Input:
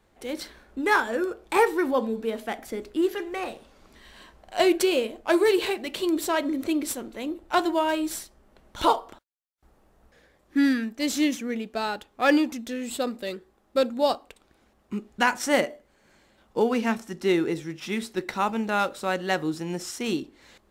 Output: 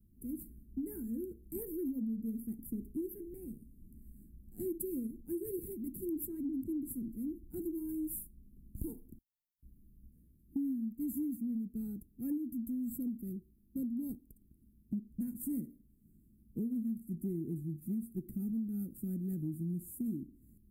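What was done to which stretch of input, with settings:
6.25–6.94 high shelf 8800 Hz -> 6000 Hz -9 dB
whole clip: inverse Chebyshev band-stop 590–5800 Hz, stop band 50 dB; compressor, threshold -37 dBFS; gain +3 dB

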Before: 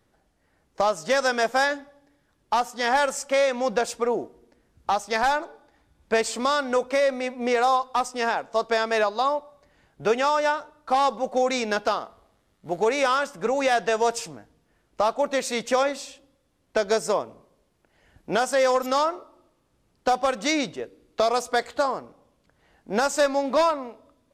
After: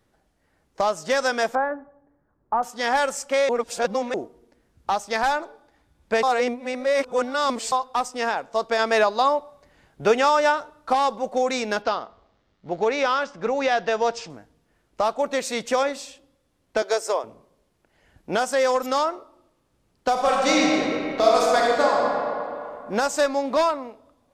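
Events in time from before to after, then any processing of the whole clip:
1.55–2.63 LPF 1400 Hz 24 dB/oct
3.49–4.14 reverse
6.23–7.72 reverse
8.79–10.93 gain +3.5 dB
11.82–14.3 LPF 5700 Hz 24 dB/oct
16.82–17.24 HPF 370 Hz 24 dB/oct
20.11–22 reverb throw, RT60 2.7 s, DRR -4 dB

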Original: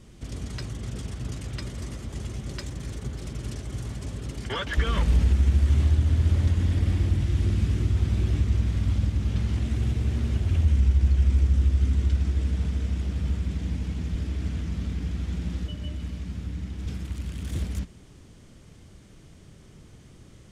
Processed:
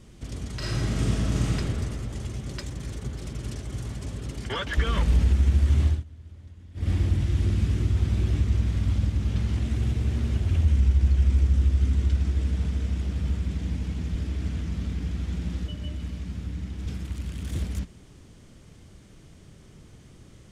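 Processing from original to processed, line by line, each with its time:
0.57–1.57 reverb throw, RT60 2.2 s, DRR -9 dB
5.87–6.91 dip -23.5 dB, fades 0.17 s

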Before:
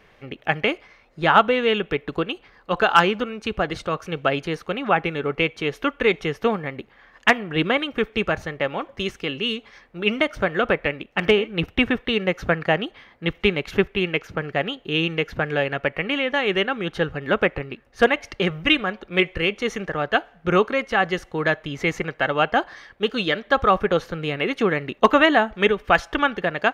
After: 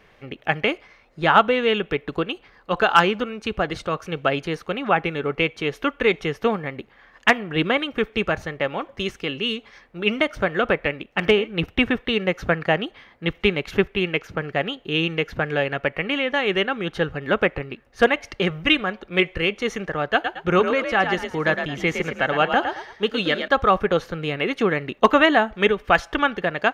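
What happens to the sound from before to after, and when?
20.13–23.48 frequency-shifting echo 0.111 s, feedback 33%, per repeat +44 Hz, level -7 dB

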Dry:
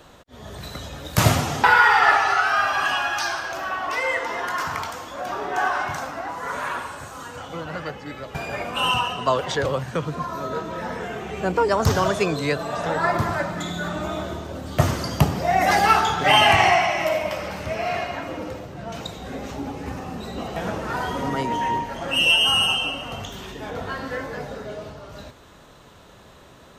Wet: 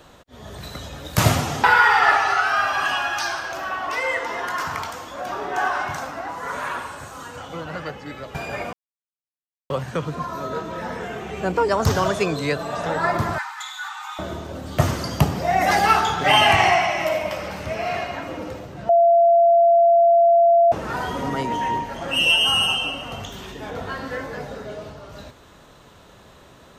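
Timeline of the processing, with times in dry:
8.73–9.7 mute
13.38–14.19 brick-wall FIR high-pass 760 Hz
18.89–20.72 bleep 682 Hz -11 dBFS

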